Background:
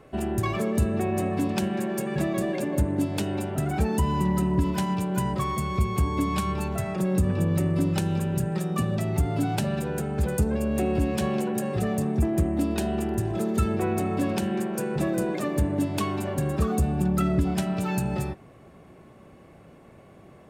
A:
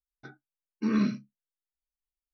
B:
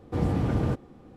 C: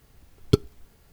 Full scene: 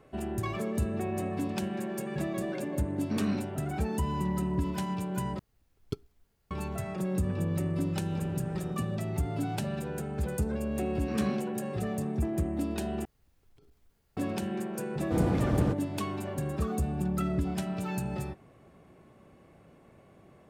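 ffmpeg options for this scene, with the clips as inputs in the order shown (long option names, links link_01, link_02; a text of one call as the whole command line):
ffmpeg -i bed.wav -i cue0.wav -i cue1.wav -i cue2.wav -filter_complex "[1:a]asplit=2[link_01][link_02];[3:a]asplit=2[link_03][link_04];[2:a]asplit=2[link_05][link_06];[0:a]volume=-6.5dB[link_07];[link_01]alimiter=limit=-21dB:level=0:latency=1:release=71[link_08];[link_04]acompressor=threshold=-42dB:ratio=12:attack=0.33:release=20:knee=1:detection=peak[link_09];[link_06]equalizer=frequency=78:width=1.5:gain=-3.5[link_10];[link_07]asplit=3[link_11][link_12][link_13];[link_11]atrim=end=5.394[link_14];[link_03]atrim=end=1.12,asetpts=PTS-STARTPTS,volume=-16dB[link_15];[link_12]atrim=start=6.506:end=13.054[link_16];[link_09]atrim=end=1.12,asetpts=PTS-STARTPTS,volume=-14dB[link_17];[link_13]atrim=start=14.166[link_18];[link_08]atrim=end=2.33,asetpts=PTS-STARTPTS,volume=-2.5dB,afade=type=in:duration=0.004:curve=hsin,afade=type=out:start_time=2.326:duration=0.004:curve=hsin,adelay=2280[link_19];[link_05]atrim=end=1.16,asetpts=PTS-STARTPTS,volume=-17.5dB,afade=type=in:duration=0.004:curve=hsin,afade=type=out:start_time=1.156:duration=0.004:curve=hsin,adelay=8000[link_20];[link_02]atrim=end=2.33,asetpts=PTS-STARTPTS,volume=-6.5dB,afade=type=in:duration=0.004:curve=hsin,afade=type=out:start_time=2.326:duration=0.004:curve=hsin,adelay=10250[link_21];[link_10]atrim=end=1.16,asetpts=PTS-STARTPTS,volume=-1dB,afade=type=in:duration=0.004:curve=hsin,afade=type=out:start_time=1.156:duration=0.004:curve=hsin,adelay=14980[link_22];[link_14][link_15]acrossfade=duration=0.004:curve1=hsin:curve2=hsin[link_23];[link_23][link_16]acrossfade=duration=0.004:curve1=hsin:curve2=hsin[link_24];[link_24][link_17]acrossfade=duration=0.004:curve1=hsin:curve2=hsin[link_25];[link_25][link_18]acrossfade=duration=0.004:curve1=hsin:curve2=hsin[link_26];[link_26][link_19][link_20][link_21][link_22]amix=inputs=5:normalize=0" out.wav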